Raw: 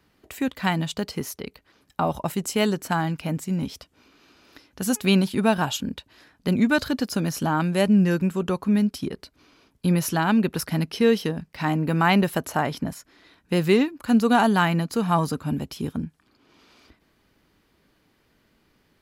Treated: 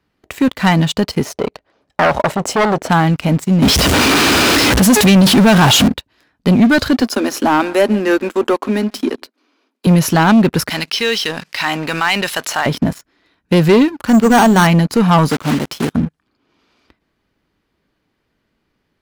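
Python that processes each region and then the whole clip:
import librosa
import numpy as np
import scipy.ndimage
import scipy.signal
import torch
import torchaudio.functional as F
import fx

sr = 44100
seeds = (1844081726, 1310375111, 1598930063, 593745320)

y = fx.chain(x, sr, fx.lowpass(hz=8600.0, slope=12),
    fx.peak_eq(hz=620.0, db=12.0, octaves=1.2),
    fx.transformer_sat(knee_hz=3000.0), at=(1.25, 2.9))
y = fx.chain(y, sr, fx.zero_step(step_db=-27.5),
    fx.highpass(hz=55.0, slope=12),
    fx.env_flatten(amount_pct=50), at=(3.62, 5.88))
y = fx.chain(y, sr, fx.cheby1_highpass(hz=230.0, order=6),
    fx.echo_single(ms=145, db=-23.0), at=(7.01, 9.87))
y = fx.chain(y, sr, fx.bandpass_q(hz=4700.0, q=0.64),
    fx.env_flatten(amount_pct=50), at=(10.7, 12.66))
y = fx.chain(y, sr, fx.hum_notches(base_hz=50, count=5),
    fx.resample_bad(factor=6, down='filtered', up='hold'), at=(14.07, 14.67))
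y = fx.chain(y, sr, fx.block_float(bits=3),
    fx.highpass(hz=230.0, slope=6),
    fx.high_shelf(hz=12000.0, db=-3.5), at=(15.29, 15.93))
y = fx.high_shelf(y, sr, hz=6900.0, db=-8.5)
y = fx.leveller(y, sr, passes=3)
y = F.gain(torch.from_numpy(y), 2.5).numpy()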